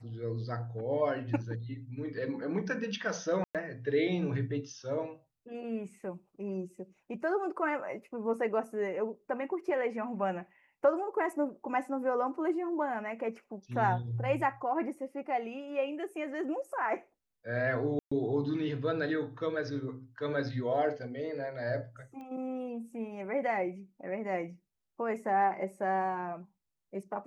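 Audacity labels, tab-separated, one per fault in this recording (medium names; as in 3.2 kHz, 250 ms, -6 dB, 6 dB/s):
3.440000	3.550000	dropout 107 ms
17.990000	18.110000	dropout 125 ms
22.210000	22.210000	pop -36 dBFS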